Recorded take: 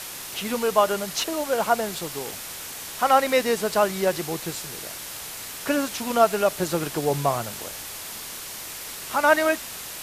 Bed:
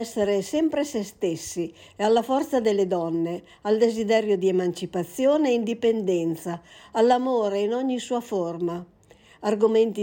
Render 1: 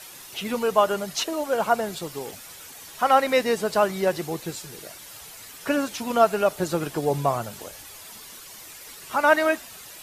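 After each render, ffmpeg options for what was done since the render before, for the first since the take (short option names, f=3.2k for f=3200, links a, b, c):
-af "afftdn=nr=10:nf=-37"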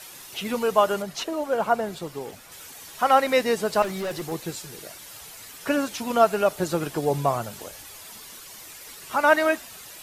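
-filter_complex "[0:a]asettb=1/sr,asplit=3[a][b][c];[a]atrim=end=1.024[d];[b]atrim=start=1.02:end=2.52,asetpts=PTS-STARTPTS,afade=t=in:d=0.004:c=qsin,afade=t=out:st=1.496:d=0.004:c=qsin,highshelf=f=2.8k:g=-7.5[e];[c]atrim=start=2.516[f];[d][e]acrossfade=d=0.004:c1=hsin:c2=qsin[g];[g][f]acrossfade=d=0.004:c1=qsin:c2=hsin,asettb=1/sr,asplit=3[h][i][j];[h]atrim=end=3.824[k];[i]atrim=start=3.82:end=4.32,asetpts=PTS-STARTPTS,afade=t=in:d=0.004:c=qsin,afade=t=out:st=0.496:d=0.004:c=qsin,asoftclip=type=hard:threshold=-26.5dB[l];[j]atrim=start=4.316[m];[k][l]acrossfade=d=0.004:c1=hsin:c2=qsin[n];[n][m]acrossfade=d=0.004:c1=qsin:c2=hsin"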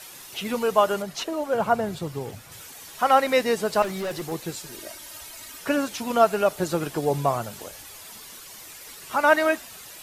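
-filter_complex "[0:a]asettb=1/sr,asplit=3[a][b][c];[a]atrim=end=1.544[d];[b]atrim=start=1.54:end=2.62,asetpts=PTS-STARTPTS,afade=t=in:d=0.004:c=qsin,afade=t=out:st=1.076:d=0.004:c=qsin,equalizer=f=110:t=o:w=1.1:g=13.5[e];[c]atrim=start=2.616[f];[d][e]acrossfade=d=0.004:c1=hsin:c2=qsin[g];[g][f]acrossfade=d=0.004:c1=qsin:c2=hsin,asettb=1/sr,asplit=3[h][i][j];[h]atrim=end=4.664[k];[i]atrim=start=4.66:end=5.61,asetpts=PTS-STARTPTS,afade=t=in:d=0.004:c=qsin,afade=t=out:st=0.946:d=0.004:c=qsin,aecho=1:1:3.2:0.68,atrim=end_sample=41895[l];[j]atrim=start=5.606[m];[k][l]acrossfade=d=0.004:c1=hsin:c2=qsin[n];[n][m]acrossfade=d=0.004:c1=qsin:c2=hsin"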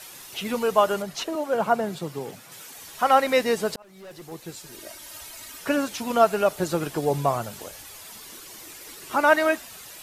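-filter_complex "[0:a]asettb=1/sr,asplit=3[a][b][c];[a]atrim=end=1.354[d];[b]atrim=start=1.35:end=2.75,asetpts=PTS-STARTPTS,afade=t=in:d=0.004:c=qsin,afade=t=out:st=1.396:d=0.004:c=qsin,highpass=f=150:w=0.5412,highpass=f=150:w=1.3066[e];[c]atrim=start=2.746[f];[d][e]acrossfade=d=0.004:c1=hsin:c2=qsin[g];[g][f]acrossfade=d=0.004:c1=qsin:c2=hsin,asettb=1/sr,asplit=3[h][i][j];[h]atrim=end=8.264[k];[i]atrim=start=8.26:end=9.24,asetpts=PTS-STARTPTS,afade=t=in:d=0.004:c=qsin,afade=t=out:st=0.976:d=0.004:c=qsin,equalizer=f=330:t=o:w=0.69:g=8.5[l];[j]atrim=start=9.236[m];[k][l]acrossfade=d=0.004:c1=hsin:c2=qsin[n];[n][m]acrossfade=d=0.004:c1=qsin:c2=hsin,asplit=2[o][p];[o]atrim=end=3.76,asetpts=PTS-STARTPTS,afade=t=out:st=3.756:d=0.004:c=hsin[q];[p]atrim=start=3.76,asetpts=PTS-STARTPTS,afade=t=in:d=1.41[r];[q][r]concat=n=2:v=0:a=1"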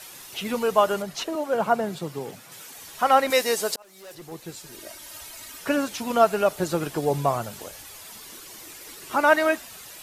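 -filter_complex "[0:a]asettb=1/sr,asplit=3[a][b][c];[a]atrim=end=3.304[d];[b]atrim=start=3.3:end=4.15,asetpts=PTS-STARTPTS,afade=t=in:d=0.004:c=qsin,afade=t=out:st=0.846:d=0.004:c=qsin,bass=f=250:g=-13,treble=f=4k:g=9[e];[c]atrim=start=4.146[f];[d][e]acrossfade=d=0.004:c1=hsin:c2=qsin[g];[g][f]acrossfade=d=0.004:c1=qsin:c2=hsin"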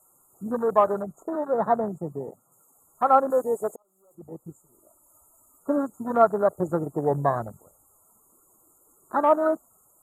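-af "afftfilt=real='re*(1-between(b*sr/4096,1400,6600))':imag='im*(1-between(b*sr/4096,1400,6600))':win_size=4096:overlap=0.75,afwtdn=0.0355"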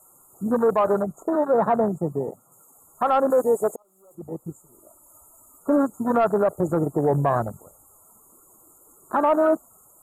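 -af "acontrast=73,alimiter=limit=-12dB:level=0:latency=1:release=18"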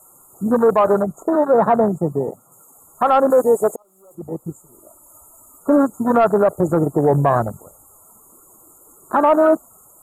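-af "volume=5.5dB"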